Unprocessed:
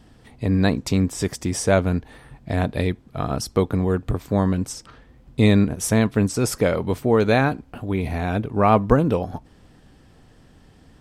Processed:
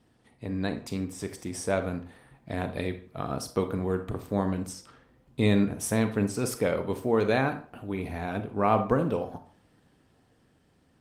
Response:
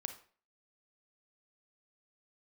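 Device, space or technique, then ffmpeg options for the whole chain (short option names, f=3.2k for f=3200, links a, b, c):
far-field microphone of a smart speaker: -filter_complex "[1:a]atrim=start_sample=2205[a];[0:a][a]afir=irnorm=-1:irlink=0,highpass=f=150:p=1,dynaudnorm=f=520:g=7:m=9dB,volume=-8dB" -ar 48000 -c:a libopus -b:a 32k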